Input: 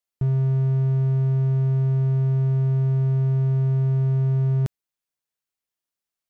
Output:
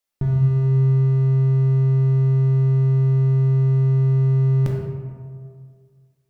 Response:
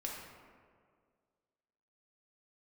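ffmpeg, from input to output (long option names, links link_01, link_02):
-filter_complex "[1:a]atrim=start_sample=2205[link_01];[0:a][link_01]afir=irnorm=-1:irlink=0,volume=7.5dB"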